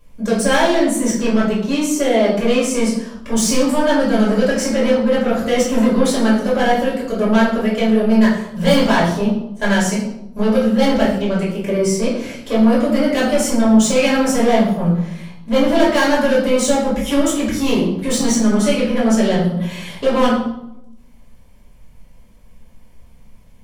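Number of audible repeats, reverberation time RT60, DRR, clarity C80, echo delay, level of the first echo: none, 0.85 s, -7.0 dB, 7.0 dB, none, none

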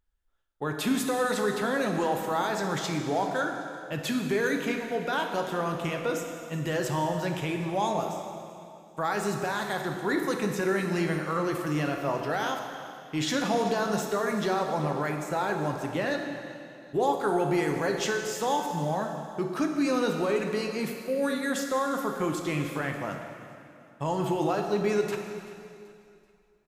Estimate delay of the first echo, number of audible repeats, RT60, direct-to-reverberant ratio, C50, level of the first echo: 0.384 s, 3, 2.6 s, 3.0 dB, 4.5 dB, -19.5 dB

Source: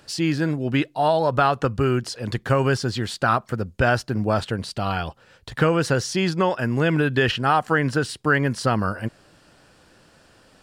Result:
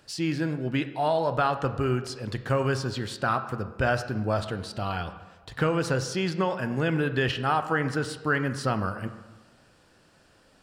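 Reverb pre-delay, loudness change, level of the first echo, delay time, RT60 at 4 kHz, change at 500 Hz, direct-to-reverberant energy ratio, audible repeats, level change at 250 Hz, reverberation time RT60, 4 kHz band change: 14 ms, -5.5 dB, none, none, 0.85 s, -5.0 dB, 9.0 dB, none, -5.5 dB, 1.3 s, -6.0 dB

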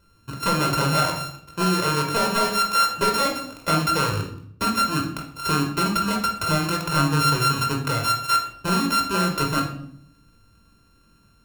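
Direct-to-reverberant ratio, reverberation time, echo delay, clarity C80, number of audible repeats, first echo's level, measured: 1.0 dB, 0.65 s, none, 10.5 dB, none, none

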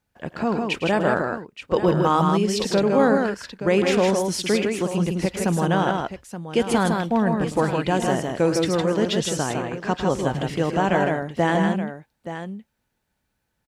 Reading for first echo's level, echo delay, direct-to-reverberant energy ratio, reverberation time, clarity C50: -12.5 dB, 0.107 s, none, none, none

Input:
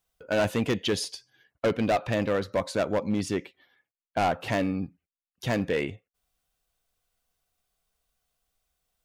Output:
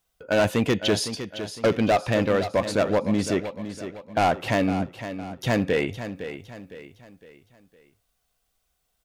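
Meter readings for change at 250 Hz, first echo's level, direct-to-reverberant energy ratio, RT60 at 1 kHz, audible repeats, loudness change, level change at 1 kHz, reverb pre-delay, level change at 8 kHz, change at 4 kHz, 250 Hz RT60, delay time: +4.5 dB, -11.0 dB, none, none, 4, +3.5 dB, +4.5 dB, none, +4.5 dB, +4.5 dB, none, 0.509 s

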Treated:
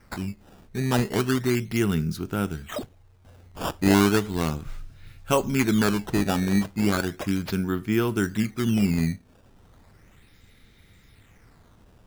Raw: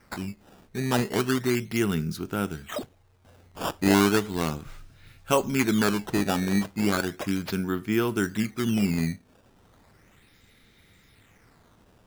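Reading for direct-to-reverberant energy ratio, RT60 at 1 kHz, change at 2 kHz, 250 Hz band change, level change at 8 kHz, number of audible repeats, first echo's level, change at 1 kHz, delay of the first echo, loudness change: none, none, 0.0 dB, +2.0 dB, 0.0 dB, none, none, 0.0 dB, none, +1.5 dB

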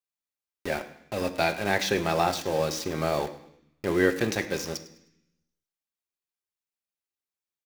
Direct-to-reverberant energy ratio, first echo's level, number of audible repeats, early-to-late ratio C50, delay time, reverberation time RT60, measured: 4.5 dB, -18.0 dB, 2, 12.5 dB, 0.103 s, 0.75 s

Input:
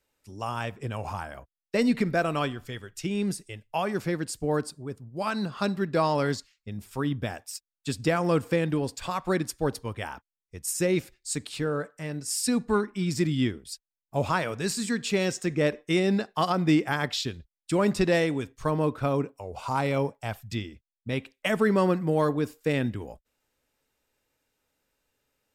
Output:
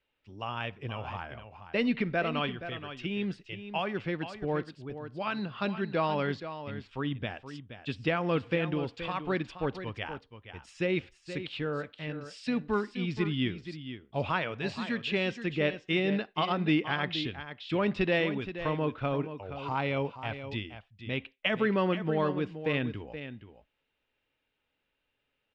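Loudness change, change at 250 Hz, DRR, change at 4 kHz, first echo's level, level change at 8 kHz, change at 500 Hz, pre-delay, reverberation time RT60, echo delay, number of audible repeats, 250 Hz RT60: -4.5 dB, -4.5 dB, none, -1.5 dB, -11.0 dB, under -25 dB, -4.5 dB, none, none, 0.474 s, 1, none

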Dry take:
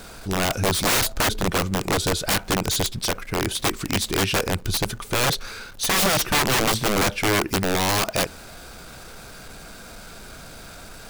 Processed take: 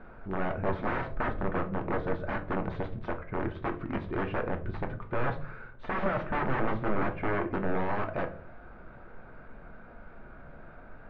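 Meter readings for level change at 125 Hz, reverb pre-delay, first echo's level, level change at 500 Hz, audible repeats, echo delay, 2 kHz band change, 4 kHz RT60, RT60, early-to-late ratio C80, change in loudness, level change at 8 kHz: -8.5 dB, 3 ms, none, -7.0 dB, none, none, -11.0 dB, 0.30 s, 0.45 s, 18.0 dB, -11.0 dB, under -40 dB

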